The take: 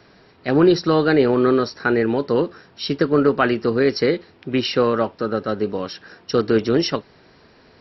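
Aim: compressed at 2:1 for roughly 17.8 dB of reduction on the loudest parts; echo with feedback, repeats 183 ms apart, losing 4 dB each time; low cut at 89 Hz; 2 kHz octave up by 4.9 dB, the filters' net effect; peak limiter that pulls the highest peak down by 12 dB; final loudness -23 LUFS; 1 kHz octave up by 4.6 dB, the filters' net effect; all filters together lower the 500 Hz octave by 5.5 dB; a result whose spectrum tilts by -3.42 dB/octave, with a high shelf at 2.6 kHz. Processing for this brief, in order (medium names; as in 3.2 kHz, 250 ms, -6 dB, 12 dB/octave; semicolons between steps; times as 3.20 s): high-pass 89 Hz; peaking EQ 500 Hz -8.5 dB; peaking EQ 1 kHz +6.5 dB; peaking EQ 2 kHz +6 dB; treble shelf 2.6 kHz -3.5 dB; compression 2:1, threshold -45 dBFS; peak limiter -30 dBFS; feedback delay 183 ms, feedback 63%, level -4 dB; trim +16 dB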